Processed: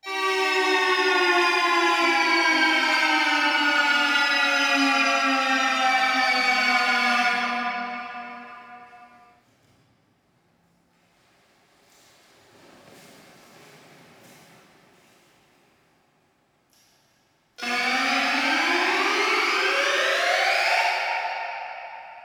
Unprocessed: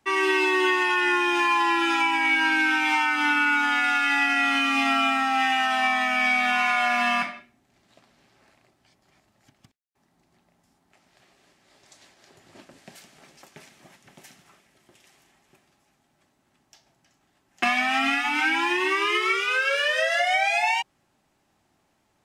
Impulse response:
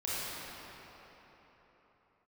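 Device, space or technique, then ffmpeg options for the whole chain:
shimmer-style reverb: -filter_complex "[0:a]asettb=1/sr,asplit=3[s0][s1][s2];[s0]atrim=end=4.774[s3];[s1]atrim=start=4.77:end=5.85,asetpts=PTS-STARTPTS,afade=t=in:d=0.004:c=qsin,afade=t=out:st=1.076:d=0.004:c=qsin,lowpass=7300[s4];[s2]atrim=start=5.846[s5];[s3][s4]acrossfade=d=0.004:c1=hsin:c2=qsin[s6];[s6][s5]acrossfade=d=0.004:c1=qsin:c2=hsin,asplit=2[s7][s8];[s8]asetrate=88200,aresample=44100,atempo=0.5,volume=0.501[s9];[s7][s9]amix=inputs=2:normalize=0[s10];[1:a]atrim=start_sample=2205[s11];[s10][s11]afir=irnorm=-1:irlink=0,volume=0.501"

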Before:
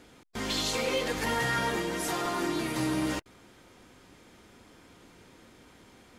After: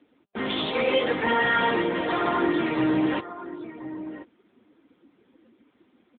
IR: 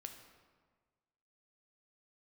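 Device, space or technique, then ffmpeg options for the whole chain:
mobile call with aggressive noise cancelling: -filter_complex "[0:a]asplit=3[s0][s1][s2];[s0]afade=t=out:st=1.53:d=0.02[s3];[s1]highpass=51,afade=t=in:st=1.53:d=0.02,afade=t=out:st=2.57:d=0.02[s4];[s2]afade=t=in:st=2.57:d=0.02[s5];[s3][s4][s5]amix=inputs=3:normalize=0,highpass=180,aecho=1:1:1037:0.237,afftdn=nr=17:nf=-43,volume=2.51" -ar 8000 -c:a libopencore_amrnb -b:a 10200

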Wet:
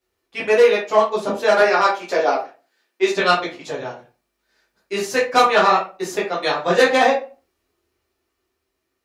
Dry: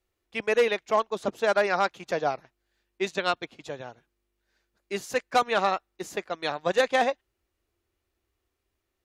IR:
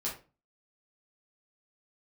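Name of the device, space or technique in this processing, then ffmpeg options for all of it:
far laptop microphone: -filter_complex "[0:a]asettb=1/sr,asplit=3[s0][s1][s2];[s0]atrim=end=1.594[s3];[s1]atrim=start=1.59:end=3.13,asetpts=PTS-STARTPTS,afade=t=in:d=0.004:c=qsin,afade=t=out:st=1.536:d=0.004:c=qsin,highpass=f=240:w=0.5412,highpass=f=240:w=1.3066[s4];[s2]atrim=start=3.126[s5];[s3][s4]acrossfade=d=0.004:c1=hsin:c2=qsin[s6];[s6][s5]acrossfade=d=0.004:c1=qsin:c2=hsin[s7];[1:a]atrim=start_sample=2205[s8];[s7][s8]afir=irnorm=-1:irlink=0,highpass=f=190:p=1,dynaudnorm=f=280:g=11:m=1.41,volume=1.68"

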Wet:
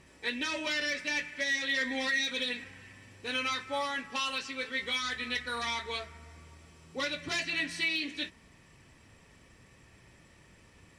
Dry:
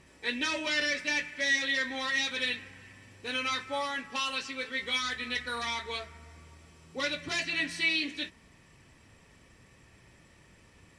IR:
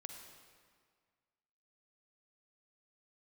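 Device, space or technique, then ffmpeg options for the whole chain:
limiter into clipper: -filter_complex "[0:a]asettb=1/sr,asplit=3[s0][s1][s2];[s0]atrim=end=1.814[s3];[s1]atrim=start=1.81:end=2.64,asetpts=PTS-STARTPTS,afade=t=in:d=0.004:c=qsin,afade=t=out:st=0.826:d=0.004:c=qsin,aecho=1:1:4.2:0.99,atrim=end_sample=36603[s4];[s2]atrim=start=2.636[s5];[s3][s4]acrossfade=d=0.004:c1=hsin:c2=qsin[s6];[s6][s5]acrossfade=d=0.004:c1=qsin:c2=hsin,alimiter=limit=0.0841:level=0:latency=1:release=235,asoftclip=type=hard:threshold=0.0708"

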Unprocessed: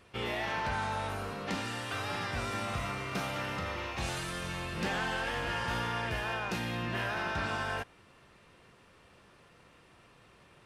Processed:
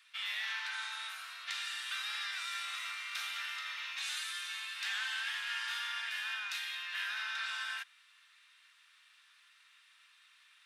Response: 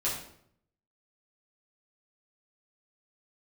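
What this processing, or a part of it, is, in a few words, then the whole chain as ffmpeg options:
headphones lying on a table: -af "highpass=f=1500:w=0.5412,highpass=f=1500:w=1.3066,equalizer=f=3700:t=o:w=0.24:g=7.5"

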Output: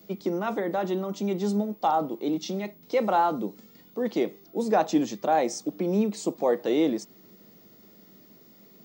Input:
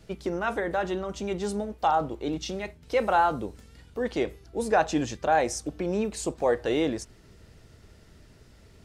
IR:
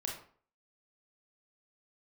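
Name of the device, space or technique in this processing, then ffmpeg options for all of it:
old television with a line whistle: -af "highpass=f=170:w=0.5412,highpass=f=170:w=1.3066,equalizer=f=200:t=q:w=4:g=8,equalizer=f=320:t=q:w=4:g=4,equalizer=f=1600:t=q:w=4:g=-9,equalizer=f=2700:t=q:w=4:g=-5,lowpass=f=7200:w=0.5412,lowpass=f=7200:w=1.3066,aeval=exprs='val(0)+0.002*sin(2*PI*15625*n/s)':c=same"

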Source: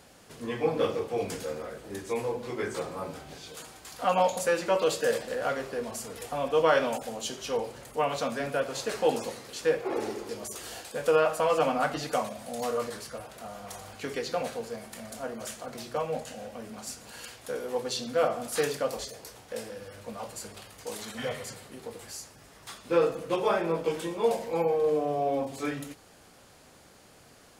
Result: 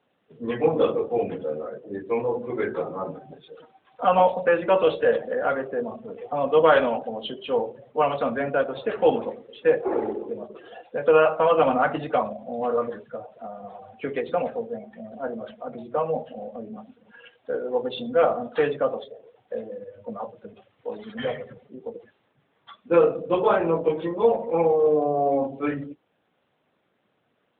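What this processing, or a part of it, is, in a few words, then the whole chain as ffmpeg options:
mobile call with aggressive noise cancelling: -af "highpass=120,afftdn=nr=19:nf=-39,volume=2.11" -ar 8000 -c:a libopencore_amrnb -b:a 12200

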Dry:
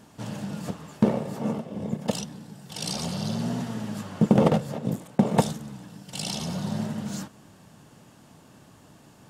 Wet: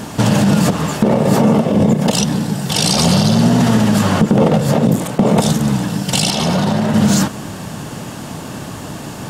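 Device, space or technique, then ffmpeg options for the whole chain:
loud club master: -filter_complex "[0:a]acompressor=threshold=0.0355:ratio=2.5,asoftclip=type=hard:threshold=0.119,alimiter=level_in=23.7:limit=0.891:release=50:level=0:latency=1,asettb=1/sr,asplit=3[s0][s1][s2];[s0]atrim=end=6.304[s3];[s1]atrim=start=6.3:end=6.94,asetpts=PTS-STARTPTS,afade=t=in:d=0.004:c=qsin,afade=t=out:st=0.636:d=0.004:c=qsin,bass=f=250:g=-6,treble=f=4000:g=-7[s4];[s2]atrim=start=6.936[s5];[s3][s4]acrossfade=d=0.004:c1=hsin:c2=qsin[s6];[s6][s5]acrossfade=d=0.004:c1=qsin:c2=hsin,volume=0.708"

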